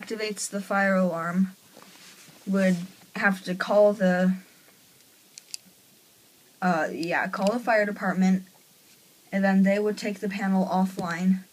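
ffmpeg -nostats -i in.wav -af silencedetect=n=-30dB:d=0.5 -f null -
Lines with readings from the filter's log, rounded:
silence_start: 1.46
silence_end: 2.47 | silence_duration: 1.01
silence_start: 4.35
silence_end: 5.38 | silence_duration: 1.03
silence_start: 5.55
silence_end: 6.62 | silence_duration: 1.07
silence_start: 8.39
silence_end: 9.33 | silence_duration: 0.94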